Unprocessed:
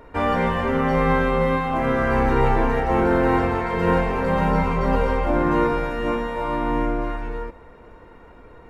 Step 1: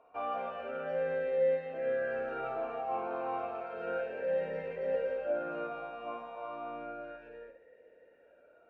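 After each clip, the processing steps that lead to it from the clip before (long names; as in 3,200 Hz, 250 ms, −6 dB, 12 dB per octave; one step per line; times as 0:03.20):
on a send: flutter between parallel walls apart 9.4 metres, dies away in 0.43 s
on the sum: formant filter swept between two vowels a-e 0.32 Hz
level −4.5 dB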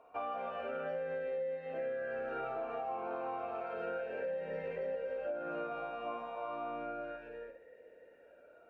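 downward compressor 12 to 1, threshold −37 dBFS, peak gain reduction 12.5 dB
level +2 dB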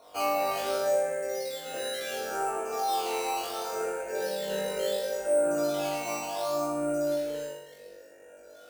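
sample-and-hold swept by an LFO 9×, swing 100% 0.7 Hz
on a send: flutter between parallel walls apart 3.5 metres, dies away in 0.75 s
on the sum: level +4 dB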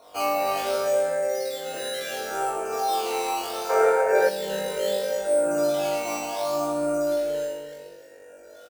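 slap from a distant wall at 51 metres, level −9 dB
gain on a spectral selection 0:03.70–0:04.29, 370–2,400 Hz +10 dB
level +3 dB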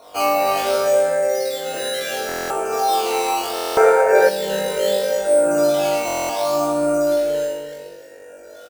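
buffer that repeats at 0:02.27/0:03.54/0:06.06, samples 1,024, times 9
level +6.5 dB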